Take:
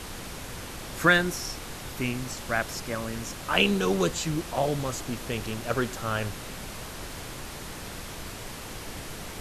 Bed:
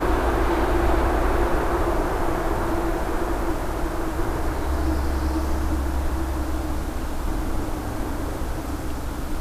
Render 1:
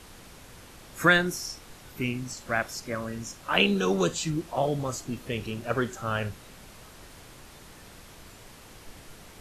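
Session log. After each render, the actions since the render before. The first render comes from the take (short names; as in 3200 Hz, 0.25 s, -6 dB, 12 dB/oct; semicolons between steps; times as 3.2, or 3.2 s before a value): noise print and reduce 10 dB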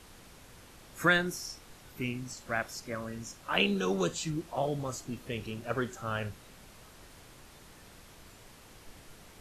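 gain -5 dB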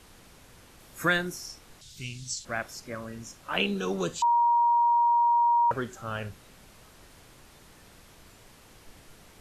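0.8–1.29 high shelf 11000 Hz +8 dB; 1.81–2.45 EQ curve 150 Hz 0 dB, 260 Hz -12 dB, 1200 Hz -13 dB, 2500 Hz -3 dB, 3600 Hz +11 dB, 7500 Hz +11 dB, 13000 Hz -7 dB; 4.22–5.71 bleep 946 Hz -19 dBFS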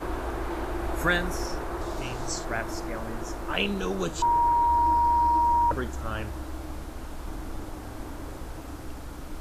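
add bed -10.5 dB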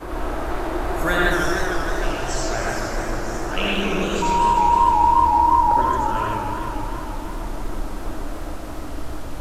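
digital reverb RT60 0.78 s, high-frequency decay 0.65×, pre-delay 40 ms, DRR -3.5 dB; warbling echo 0.154 s, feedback 78%, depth 192 cents, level -6 dB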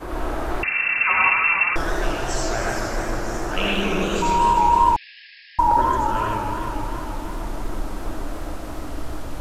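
0.63–1.76 inverted band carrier 2700 Hz; 4.96–5.59 brick-wall FIR band-pass 1600–5400 Hz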